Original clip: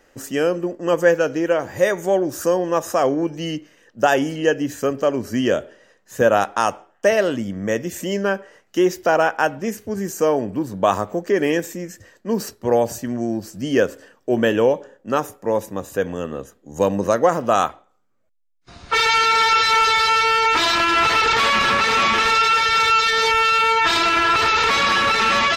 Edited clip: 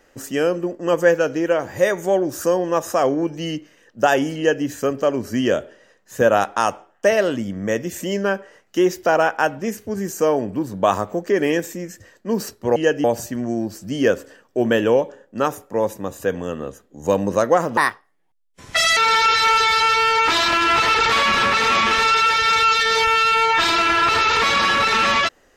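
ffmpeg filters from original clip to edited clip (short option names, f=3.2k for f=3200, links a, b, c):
-filter_complex "[0:a]asplit=5[a][b][c][d][e];[a]atrim=end=12.762[f];[b]atrim=start=4.368:end=4.652[g];[c]atrim=start=12.758:end=17.494[h];[d]atrim=start=17.49:end=19.24,asetpts=PTS-STARTPTS,asetrate=64386,aresample=44100[i];[e]atrim=start=19.236[j];[f][g]acrossfade=d=0.004:c1=hsin:c2=hsin[k];[k][h]acrossfade=d=0.004:c1=hsin:c2=hsin[l];[l][i]acrossfade=d=0.004:c1=hsin:c2=hsin[m];[m][j]acrossfade=d=0.004:c1=hsin:c2=hsin"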